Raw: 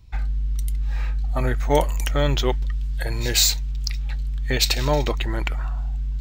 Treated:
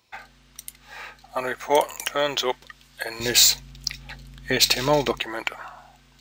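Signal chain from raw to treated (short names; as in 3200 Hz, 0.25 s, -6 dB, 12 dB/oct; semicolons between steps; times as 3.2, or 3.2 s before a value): HPF 480 Hz 12 dB/oct, from 3.2 s 190 Hz, from 5.19 s 460 Hz; gain +2.5 dB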